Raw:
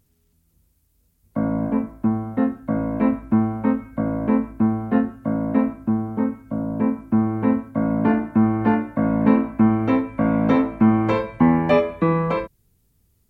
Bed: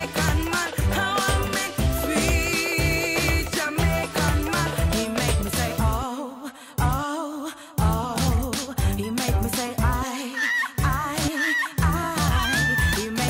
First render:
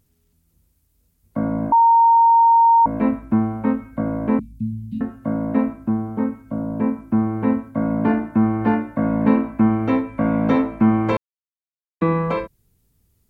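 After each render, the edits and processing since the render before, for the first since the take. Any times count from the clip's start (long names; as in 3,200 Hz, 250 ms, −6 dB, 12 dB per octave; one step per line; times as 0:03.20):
0:01.72–0:02.86: beep over 923 Hz −9.5 dBFS
0:04.39–0:05.01: inverse Chebyshev band-stop filter 400–1,700 Hz, stop band 50 dB
0:11.17–0:12.01: silence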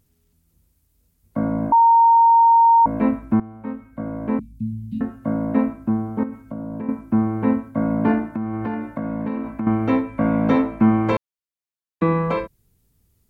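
0:03.40–0:04.92: fade in, from −16.5 dB
0:06.23–0:06.89: downward compressor 5 to 1, threshold −26 dBFS
0:08.33–0:09.67: downward compressor, threshold −22 dBFS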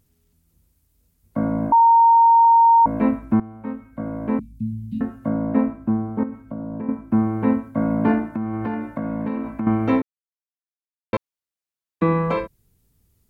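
0:01.80–0:02.45: tilt shelving filter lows +3.5 dB, about 930 Hz
0:05.28–0:07.12: high-shelf EQ 3,200 Hz −9.5 dB
0:10.02–0:11.13: silence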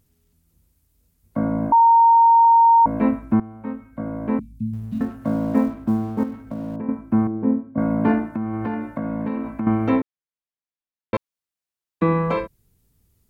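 0:04.73–0:06.76: mu-law and A-law mismatch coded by mu
0:07.27–0:07.78: resonant band-pass 280 Hz, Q 1
0:09.89–0:11.15: high-frequency loss of the air 120 metres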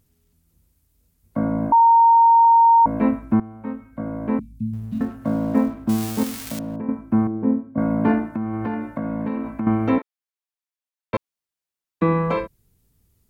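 0:05.89–0:06.59: spike at every zero crossing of −16.5 dBFS
0:09.98–0:11.14: high-pass filter 650 Hz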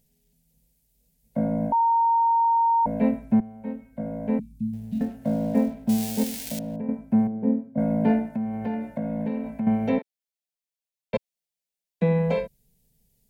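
phaser with its sweep stopped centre 320 Hz, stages 6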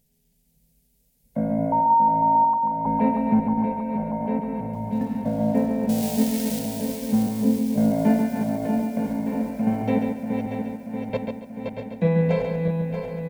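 feedback delay that plays each chunk backwards 317 ms, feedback 79%, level −6 dB
repeating echo 139 ms, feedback 28%, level −6 dB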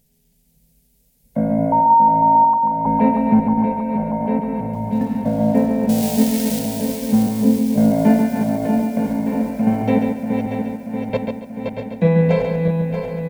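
level +5.5 dB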